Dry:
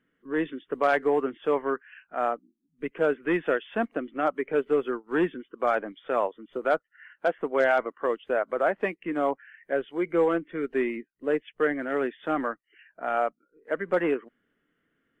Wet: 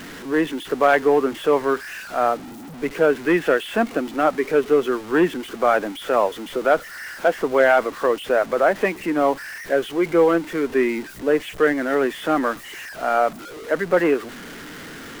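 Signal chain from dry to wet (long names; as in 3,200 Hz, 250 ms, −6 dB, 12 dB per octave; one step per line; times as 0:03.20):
converter with a step at zero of −37.5 dBFS
level +6.5 dB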